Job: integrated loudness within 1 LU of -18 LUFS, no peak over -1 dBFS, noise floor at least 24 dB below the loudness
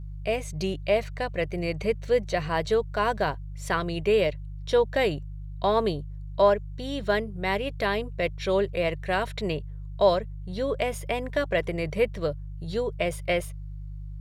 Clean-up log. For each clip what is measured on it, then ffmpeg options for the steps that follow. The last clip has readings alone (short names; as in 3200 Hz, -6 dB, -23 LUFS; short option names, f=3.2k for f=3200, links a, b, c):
hum 50 Hz; harmonics up to 150 Hz; hum level -34 dBFS; loudness -27.0 LUFS; peak -8.5 dBFS; loudness target -18.0 LUFS
-> -af "bandreject=f=50:t=h:w=4,bandreject=f=100:t=h:w=4,bandreject=f=150:t=h:w=4"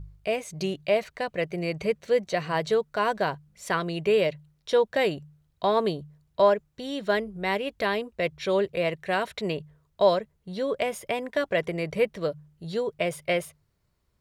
hum none; loudness -27.0 LUFS; peak -9.0 dBFS; loudness target -18.0 LUFS
-> -af "volume=9dB,alimiter=limit=-1dB:level=0:latency=1"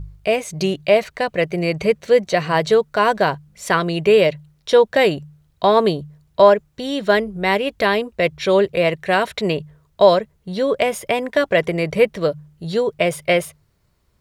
loudness -18.5 LUFS; peak -1.0 dBFS; noise floor -62 dBFS